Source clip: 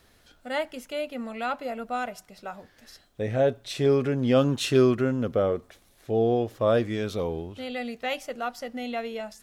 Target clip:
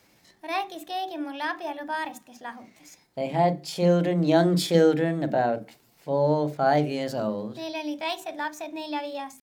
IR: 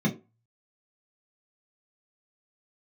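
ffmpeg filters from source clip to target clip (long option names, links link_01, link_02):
-filter_complex "[0:a]asetrate=55563,aresample=44100,atempo=0.793701,highpass=frequency=180:poles=1,asplit=2[link_01][link_02];[1:a]atrim=start_sample=2205,adelay=32[link_03];[link_02][link_03]afir=irnorm=-1:irlink=0,volume=-21.5dB[link_04];[link_01][link_04]amix=inputs=2:normalize=0"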